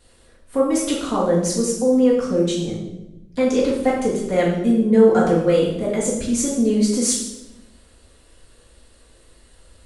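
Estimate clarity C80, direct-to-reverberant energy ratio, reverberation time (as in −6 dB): 6.0 dB, −8.0 dB, 0.95 s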